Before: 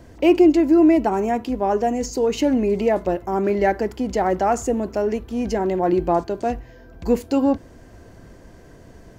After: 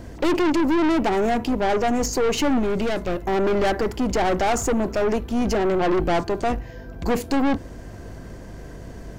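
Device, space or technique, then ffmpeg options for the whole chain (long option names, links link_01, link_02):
valve amplifier with mains hum: -filter_complex "[0:a]aeval=exprs='(tanh(17.8*val(0)+0.4)-tanh(0.4))/17.8':channel_layout=same,aeval=exprs='val(0)+0.00447*(sin(2*PI*50*n/s)+sin(2*PI*2*50*n/s)/2+sin(2*PI*3*50*n/s)/3+sin(2*PI*4*50*n/s)/4+sin(2*PI*5*50*n/s)/5)':channel_layout=same,asettb=1/sr,asplit=3[link_01][link_02][link_03];[link_01]atrim=end=2.594[link_04];[link_02]atrim=start=2.59:end=3.26,asetpts=PTS-STARTPTS,afade=type=in:duration=0.004:curve=qsin,afade=type=out:start_time=0.666:duration=0.004:curve=qsin,equalizer=frequency=820:width=0.54:gain=-5.5[link_05];[link_03]atrim=start=3.256[link_06];[link_04][link_05]acrossfade=duration=0.004:curve1=hsin:curve2=qsin[link_07];[link_07][link_06]acrossfade=duration=0.004:curve1=qsin:curve2=hsin,volume=7dB"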